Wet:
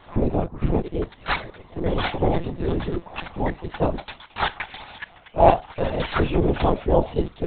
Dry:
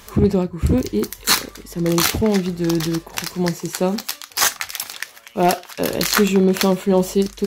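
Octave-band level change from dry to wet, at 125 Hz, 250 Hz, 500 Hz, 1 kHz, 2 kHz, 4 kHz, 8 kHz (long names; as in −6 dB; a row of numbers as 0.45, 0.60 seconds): −3.5 dB, −7.5 dB, −3.0 dB, +1.0 dB, −5.5 dB, −11.5 dB, below −40 dB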